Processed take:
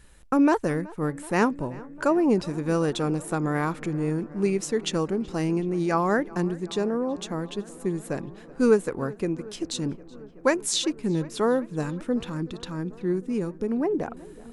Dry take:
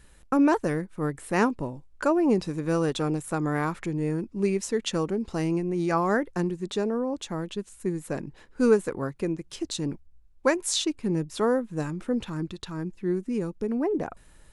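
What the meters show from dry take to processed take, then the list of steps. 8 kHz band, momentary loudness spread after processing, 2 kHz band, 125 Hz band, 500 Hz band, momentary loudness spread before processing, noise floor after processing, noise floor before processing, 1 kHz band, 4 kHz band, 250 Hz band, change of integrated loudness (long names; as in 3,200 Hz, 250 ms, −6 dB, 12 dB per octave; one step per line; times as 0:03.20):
+1.0 dB, 11 LU, +1.0 dB, +1.0 dB, +1.0 dB, 10 LU, −46 dBFS, −55 dBFS, +1.0 dB, +1.0 dB, +1.0 dB, +1.0 dB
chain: feedback echo with a low-pass in the loop 376 ms, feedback 81%, low-pass 3,300 Hz, level −21 dB
level +1 dB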